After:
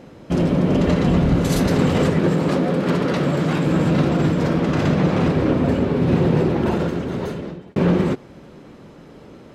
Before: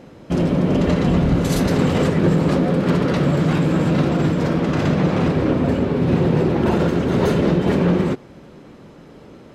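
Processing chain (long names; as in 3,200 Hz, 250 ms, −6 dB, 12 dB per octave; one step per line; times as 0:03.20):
0:02.19–0:03.67: high-pass filter 170 Hz 6 dB per octave
0:06.36–0:07.76: fade out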